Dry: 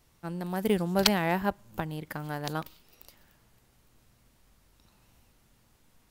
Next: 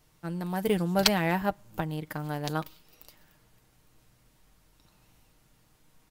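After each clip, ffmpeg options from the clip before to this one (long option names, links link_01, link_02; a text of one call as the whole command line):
ffmpeg -i in.wav -af "aecho=1:1:6.5:0.39" out.wav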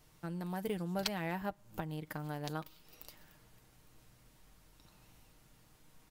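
ffmpeg -i in.wav -af "acompressor=threshold=-43dB:ratio=2" out.wav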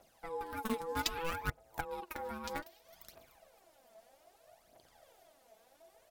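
ffmpeg -i in.wav -filter_complex "[0:a]asplit=2[link_01][link_02];[link_02]acrusher=bits=4:mix=0:aa=0.000001,volume=-7dB[link_03];[link_01][link_03]amix=inputs=2:normalize=0,aeval=exprs='val(0)*sin(2*PI*660*n/s)':channel_layout=same,aphaser=in_gain=1:out_gain=1:delay=4.7:decay=0.64:speed=0.63:type=triangular,volume=-1dB" out.wav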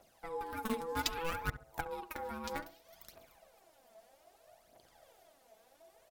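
ffmpeg -i in.wav -filter_complex "[0:a]asplit=2[link_01][link_02];[link_02]adelay=68,lowpass=frequency=1400:poles=1,volume=-12.5dB,asplit=2[link_03][link_04];[link_04]adelay=68,lowpass=frequency=1400:poles=1,volume=0.31,asplit=2[link_05][link_06];[link_06]adelay=68,lowpass=frequency=1400:poles=1,volume=0.31[link_07];[link_01][link_03][link_05][link_07]amix=inputs=4:normalize=0" out.wav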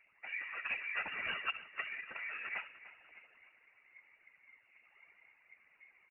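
ffmpeg -i in.wav -af "lowpass=frequency=2400:width_type=q:width=0.5098,lowpass=frequency=2400:width_type=q:width=0.6013,lowpass=frequency=2400:width_type=q:width=0.9,lowpass=frequency=2400:width_type=q:width=2.563,afreqshift=-2800,afftfilt=real='hypot(re,im)*cos(2*PI*random(0))':imag='hypot(re,im)*sin(2*PI*random(1))':win_size=512:overlap=0.75,aecho=1:1:297|594|891|1188:0.158|0.0729|0.0335|0.0154,volume=4.5dB" out.wav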